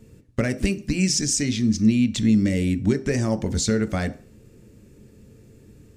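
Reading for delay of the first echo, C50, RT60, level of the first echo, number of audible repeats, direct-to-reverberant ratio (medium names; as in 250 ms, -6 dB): no echo, 16.0 dB, 0.40 s, no echo, no echo, 9.0 dB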